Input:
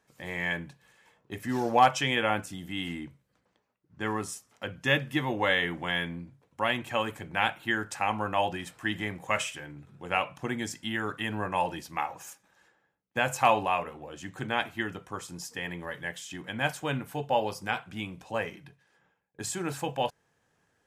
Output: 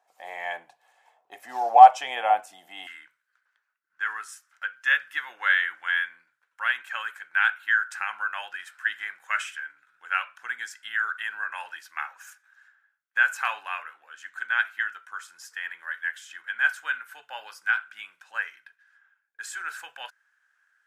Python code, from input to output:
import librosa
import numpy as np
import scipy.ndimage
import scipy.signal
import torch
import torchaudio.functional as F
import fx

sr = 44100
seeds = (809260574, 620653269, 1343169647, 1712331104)

y = fx.highpass_res(x, sr, hz=fx.steps((0.0, 730.0), (2.87, 1500.0)), q=8.2)
y = F.gain(torch.from_numpy(y), -5.0).numpy()